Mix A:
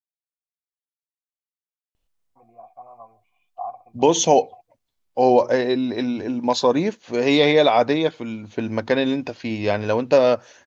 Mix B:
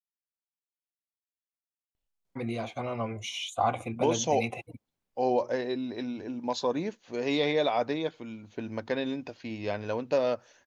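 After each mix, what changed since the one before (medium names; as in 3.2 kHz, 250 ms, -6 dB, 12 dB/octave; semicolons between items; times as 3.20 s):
first voice: remove cascade formant filter a; second voice -11.0 dB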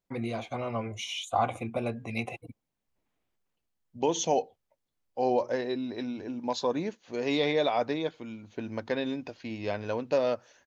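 first voice: entry -2.25 s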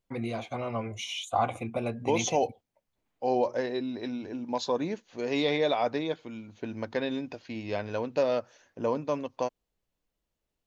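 second voice: entry -1.95 s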